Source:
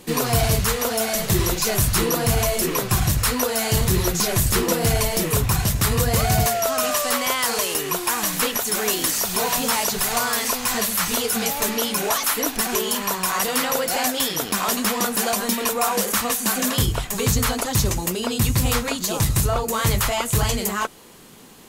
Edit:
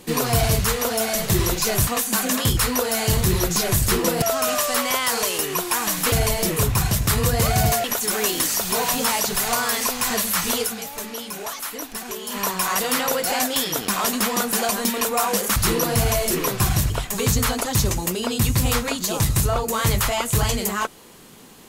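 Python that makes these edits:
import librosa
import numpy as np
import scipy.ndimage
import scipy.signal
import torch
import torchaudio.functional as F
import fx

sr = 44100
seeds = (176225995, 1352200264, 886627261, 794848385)

y = fx.edit(x, sr, fx.swap(start_s=1.87, length_s=1.34, other_s=16.2, other_length_s=0.7),
    fx.move(start_s=4.86, length_s=1.72, to_s=8.48),
    fx.fade_down_up(start_s=11.3, length_s=1.7, db=-9.0, fade_s=0.32, curve='exp'), tone=tone)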